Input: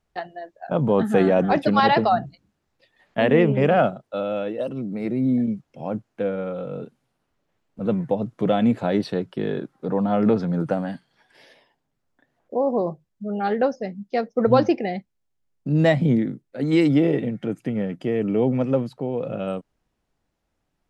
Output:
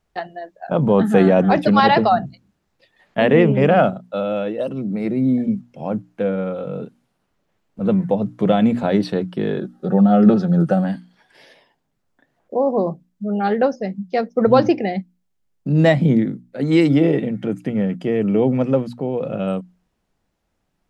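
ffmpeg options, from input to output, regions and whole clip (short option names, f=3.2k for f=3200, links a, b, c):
-filter_complex "[0:a]asettb=1/sr,asplit=3[a][b][c];[a]atrim=end=9.604[d];[b]atrim=start=9.6:end=10.84,asetpts=PTS-STARTPTS,afade=t=in:d=0.004:c=qsin,afade=t=out:st=1.236:d=0.004:c=qsin,asuperstop=centerf=1000:order=8:qfactor=4.5,equalizer=f=2.2k:w=5.5:g=-13,aecho=1:1:5.4:0.57,atrim=end_sample=54684[e];[c]atrim=start=10.836[f];[d][e]acrossfade=d=0.004:c1=hsin:c2=qsin[g];[g][f]acrossfade=d=0.004:c1=qsin:c2=hsin,equalizer=f=190:t=o:w=0.25:g=5,bandreject=f=60:t=h:w=6,bandreject=f=120:t=h:w=6,bandreject=f=180:t=h:w=6,bandreject=f=240:t=h:w=6,bandreject=f=300:t=h:w=6,volume=3.5dB"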